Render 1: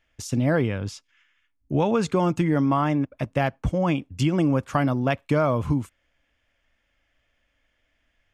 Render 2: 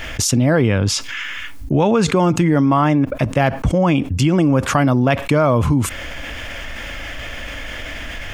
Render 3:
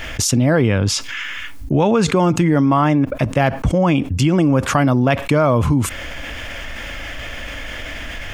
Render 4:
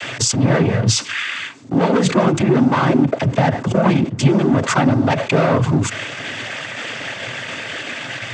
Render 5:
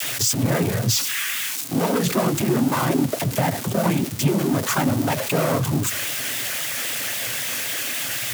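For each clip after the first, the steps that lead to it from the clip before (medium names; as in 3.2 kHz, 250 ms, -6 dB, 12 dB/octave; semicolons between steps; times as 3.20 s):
level flattener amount 70%; trim +5 dB
no audible change
waveshaping leveller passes 3; noise-vocoded speech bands 16; trim -7 dB
zero-crossing glitches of -11.5 dBFS; vibrato 3.8 Hz 89 cents; trim -6 dB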